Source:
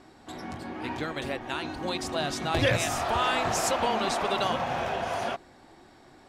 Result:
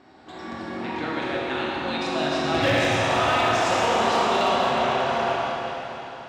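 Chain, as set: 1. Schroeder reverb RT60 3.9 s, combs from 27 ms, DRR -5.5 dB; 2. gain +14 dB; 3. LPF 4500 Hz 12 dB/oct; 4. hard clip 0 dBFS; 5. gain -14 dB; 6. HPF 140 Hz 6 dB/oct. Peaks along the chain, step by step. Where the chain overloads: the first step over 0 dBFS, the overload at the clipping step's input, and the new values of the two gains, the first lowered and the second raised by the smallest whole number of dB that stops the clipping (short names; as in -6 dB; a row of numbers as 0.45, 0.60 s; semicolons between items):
-7.5, +6.5, +6.0, 0.0, -14.0, -11.5 dBFS; step 2, 6.0 dB; step 2 +8 dB, step 5 -8 dB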